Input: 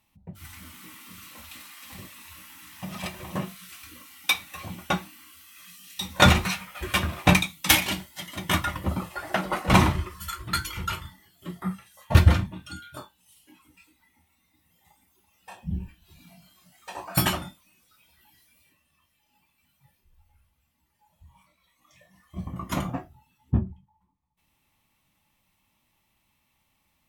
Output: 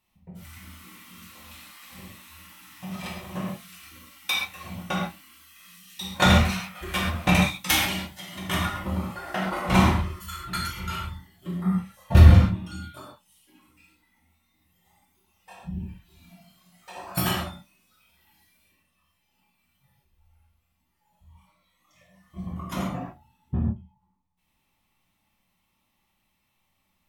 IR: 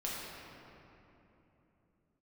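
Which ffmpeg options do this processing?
-filter_complex "[0:a]asettb=1/sr,asplit=3[a][b][c];[a]atrim=end=10.964[d];[b]atrim=start=10.96:end=12.8,asetpts=PTS-STARTPTS,afade=t=in:d=0.004:c=qsin,afade=t=out:st=1.836:d=0.004:c=qsin,lowshelf=f=410:g=6.5[e];[c]atrim=start=12.796[f];[d][e]acrossfade=d=0.004:c1=hsin:c2=qsin[g];[g][f]acrossfade=d=0.004:c1=qsin:c2=hsin[h];[1:a]atrim=start_sample=2205,atrim=end_sample=6174[i];[h][i]afir=irnorm=-1:irlink=0,volume=-2.5dB"

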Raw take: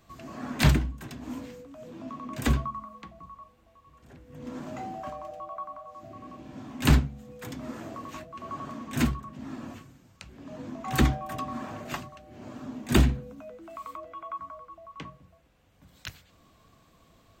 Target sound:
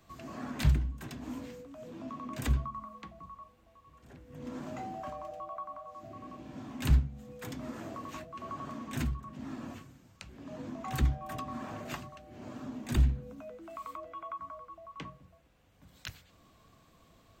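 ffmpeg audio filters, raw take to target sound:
-filter_complex "[0:a]acrossover=split=130[a][b];[b]acompressor=threshold=-34dB:ratio=5[c];[a][c]amix=inputs=2:normalize=0,volume=-2dB"

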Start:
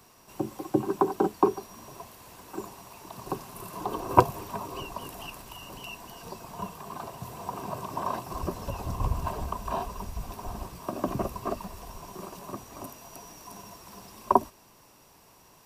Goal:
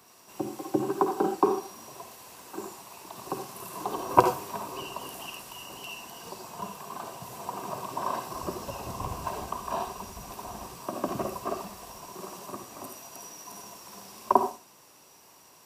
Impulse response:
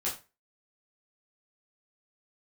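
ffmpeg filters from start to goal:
-filter_complex "[0:a]highpass=f=240:p=1,asplit=2[a][b];[b]equalizer=f=7k:w=0.4:g=10.5[c];[1:a]atrim=start_sample=2205,adelay=52[d];[c][d]afir=irnorm=-1:irlink=0,volume=-12.5dB[e];[a][e]amix=inputs=2:normalize=0"

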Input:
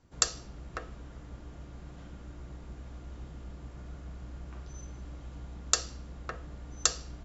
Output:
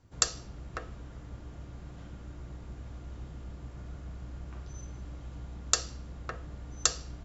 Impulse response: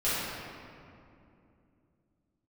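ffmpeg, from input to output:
-af "equalizer=f=100:w=3.1:g=8.5"

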